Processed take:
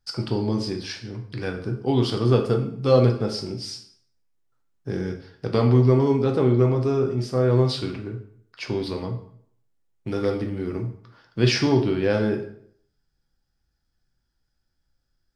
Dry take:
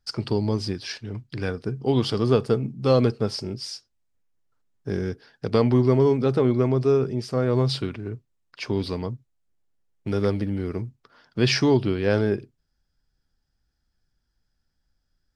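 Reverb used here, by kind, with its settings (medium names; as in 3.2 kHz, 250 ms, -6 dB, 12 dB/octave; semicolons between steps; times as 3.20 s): plate-style reverb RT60 0.62 s, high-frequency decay 0.8×, DRR 3 dB; trim -1.5 dB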